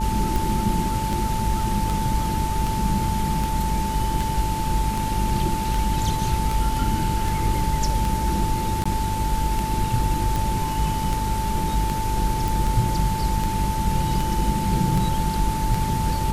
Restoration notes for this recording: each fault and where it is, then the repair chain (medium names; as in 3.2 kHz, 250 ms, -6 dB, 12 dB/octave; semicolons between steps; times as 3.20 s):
hum 50 Hz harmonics 8 -28 dBFS
tick 78 rpm
whine 880 Hz -26 dBFS
8.84–8.86 s: dropout 15 ms
12.48 s: pop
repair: de-click; de-hum 50 Hz, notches 8; band-stop 880 Hz, Q 30; interpolate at 8.84 s, 15 ms